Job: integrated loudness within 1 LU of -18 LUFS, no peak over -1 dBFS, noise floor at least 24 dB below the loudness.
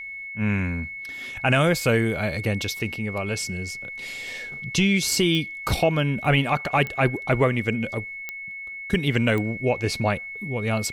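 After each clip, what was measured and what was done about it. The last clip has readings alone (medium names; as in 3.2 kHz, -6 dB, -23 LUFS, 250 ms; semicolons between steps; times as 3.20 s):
clicks found 4; steady tone 2.2 kHz; tone level -33 dBFS; loudness -24.0 LUFS; peak level -10.0 dBFS; loudness target -18.0 LUFS
-> de-click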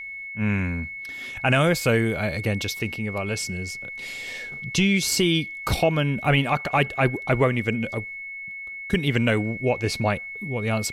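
clicks found 0; steady tone 2.2 kHz; tone level -33 dBFS
-> band-stop 2.2 kHz, Q 30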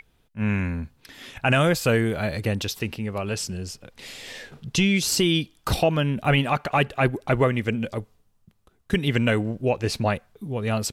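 steady tone not found; loudness -24.0 LUFS; peak level -10.0 dBFS; loudness target -18.0 LUFS
-> trim +6 dB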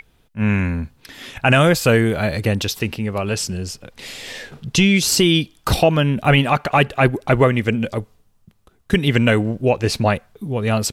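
loudness -18.0 LUFS; peak level -4.0 dBFS; noise floor -58 dBFS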